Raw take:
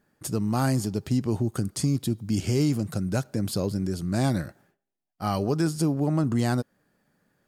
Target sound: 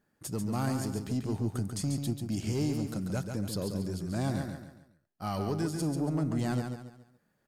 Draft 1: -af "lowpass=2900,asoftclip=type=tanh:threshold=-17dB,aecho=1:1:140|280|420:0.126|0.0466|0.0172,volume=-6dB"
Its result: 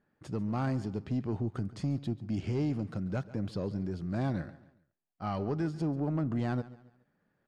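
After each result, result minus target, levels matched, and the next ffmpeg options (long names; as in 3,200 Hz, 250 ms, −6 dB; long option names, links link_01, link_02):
echo-to-direct −12 dB; 4,000 Hz band −7.5 dB
-af "lowpass=2900,asoftclip=type=tanh:threshold=-17dB,aecho=1:1:140|280|420|560:0.501|0.185|0.0686|0.0254,volume=-6dB"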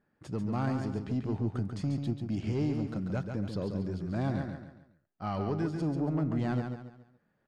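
4,000 Hz band −7.0 dB
-af "asoftclip=type=tanh:threshold=-17dB,aecho=1:1:140|280|420|560:0.501|0.185|0.0686|0.0254,volume=-6dB"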